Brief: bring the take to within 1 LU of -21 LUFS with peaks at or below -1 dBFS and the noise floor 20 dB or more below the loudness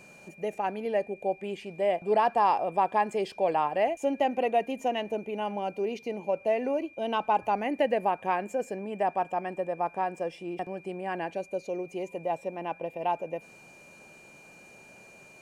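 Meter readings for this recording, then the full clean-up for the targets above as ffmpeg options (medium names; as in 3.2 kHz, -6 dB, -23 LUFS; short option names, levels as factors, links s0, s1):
steady tone 2.4 kHz; tone level -52 dBFS; loudness -30.0 LUFS; peak level -14.0 dBFS; loudness target -21.0 LUFS
-> -af "bandreject=f=2400:w=30"
-af "volume=2.82"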